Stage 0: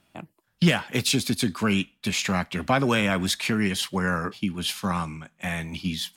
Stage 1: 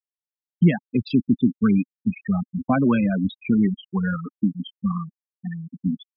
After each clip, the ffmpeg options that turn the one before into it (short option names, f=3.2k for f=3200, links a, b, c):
-af "afftfilt=real='re*gte(hypot(re,im),0.2)':imag='im*gte(hypot(re,im),0.2)':win_size=1024:overlap=0.75,equalizer=f=250:t=o:w=1:g=9,equalizer=f=500:t=o:w=1:g=-3,equalizer=f=4k:t=o:w=1:g=-12,equalizer=f=8k:t=o:w=1:g=12"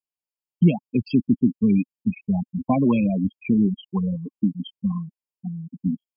-af "afftfilt=real='re*eq(mod(floor(b*sr/1024/1100),2),0)':imag='im*eq(mod(floor(b*sr/1024/1100),2),0)':win_size=1024:overlap=0.75"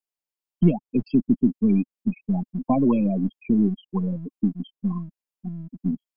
-filter_complex "[0:a]acrossover=split=120|1400[a][b][c];[a]aeval=exprs='abs(val(0))':c=same[d];[c]acompressor=threshold=-50dB:ratio=6[e];[d][b][e]amix=inputs=3:normalize=0"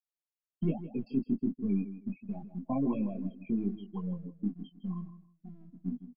-af "flanger=delay=18.5:depth=4.3:speed=1.3,aecho=1:1:159|318:0.224|0.047,volume=-8.5dB"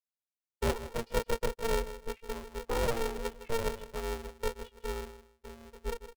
-af "aeval=exprs='val(0)*sgn(sin(2*PI*230*n/s))':c=same"